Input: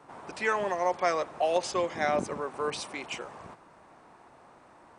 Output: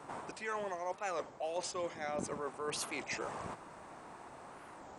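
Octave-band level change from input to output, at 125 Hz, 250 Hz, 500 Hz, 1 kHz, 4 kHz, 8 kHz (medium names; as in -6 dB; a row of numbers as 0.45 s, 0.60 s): -6.0 dB, -7.5 dB, -10.0 dB, -9.5 dB, -6.5 dB, -2.0 dB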